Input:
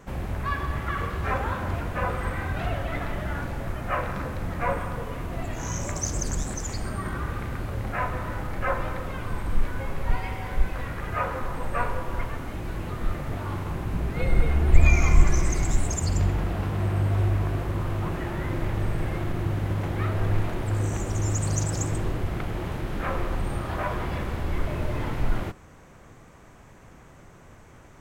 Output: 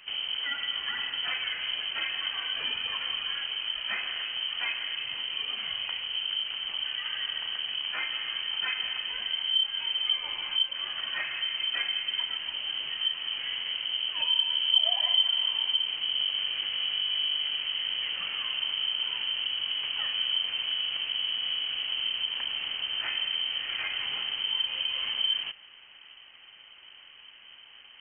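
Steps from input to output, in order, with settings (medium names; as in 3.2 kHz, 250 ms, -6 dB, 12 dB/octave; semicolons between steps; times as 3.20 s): compression 2:1, threshold -28 dBFS, peak gain reduction 12 dB; frequency inversion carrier 3.1 kHz; trim -3 dB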